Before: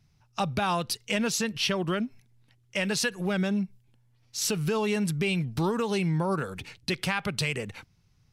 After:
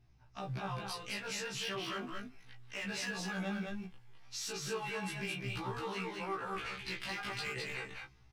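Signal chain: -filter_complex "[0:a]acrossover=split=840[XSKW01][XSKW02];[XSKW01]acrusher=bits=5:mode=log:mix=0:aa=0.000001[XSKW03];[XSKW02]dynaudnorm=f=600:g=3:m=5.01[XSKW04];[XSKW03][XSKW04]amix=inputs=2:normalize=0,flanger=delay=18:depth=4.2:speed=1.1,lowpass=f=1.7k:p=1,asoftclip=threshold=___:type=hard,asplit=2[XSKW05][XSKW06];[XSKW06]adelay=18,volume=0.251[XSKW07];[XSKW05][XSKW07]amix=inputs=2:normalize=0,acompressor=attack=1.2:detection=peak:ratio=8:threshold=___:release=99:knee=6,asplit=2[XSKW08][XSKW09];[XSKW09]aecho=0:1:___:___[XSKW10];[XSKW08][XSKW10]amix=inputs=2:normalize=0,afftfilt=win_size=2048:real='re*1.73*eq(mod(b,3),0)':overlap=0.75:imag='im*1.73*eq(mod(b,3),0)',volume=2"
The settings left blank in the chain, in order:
0.0944, 0.00891, 212, 0.708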